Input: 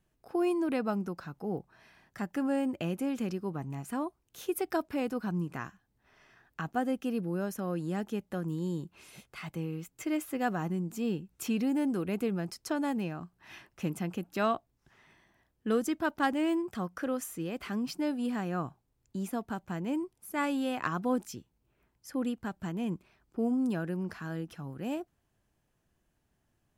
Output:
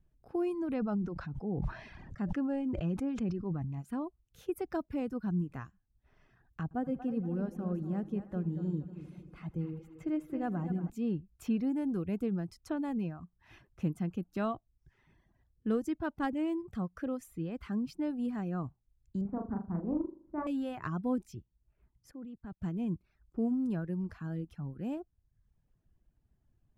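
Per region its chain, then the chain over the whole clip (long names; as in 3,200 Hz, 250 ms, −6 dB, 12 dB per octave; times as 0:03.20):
0:00.74–0:03.79: low-pass filter 5,600 Hz + level that may fall only so fast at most 29 dB per second
0:06.63–0:10.90: high-shelf EQ 2,500 Hz −10 dB + echo machine with several playback heads 78 ms, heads first and third, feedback 61%, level −10.5 dB
0:19.21–0:20.47: low-pass filter 1,200 Hz 24 dB per octave + flutter between parallel walls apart 6.9 metres, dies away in 0.7 s + highs frequency-modulated by the lows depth 0.18 ms
0:22.11–0:22.62: high-shelf EQ 6,200 Hz −11.5 dB + output level in coarse steps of 21 dB + multiband upward and downward expander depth 40%
whole clip: RIAA equalisation playback; reverb reduction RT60 0.68 s; high-shelf EQ 6,900 Hz +9 dB; level −7 dB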